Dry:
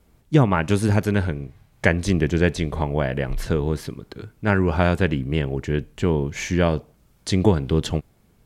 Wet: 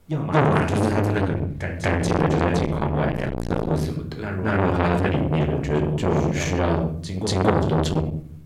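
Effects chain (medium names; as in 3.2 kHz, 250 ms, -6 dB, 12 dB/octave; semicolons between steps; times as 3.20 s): pre-echo 233 ms -12 dB; on a send at -2.5 dB: reverberation RT60 0.55 s, pre-delay 7 ms; on the sum: transformer saturation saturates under 1.2 kHz; trim +2 dB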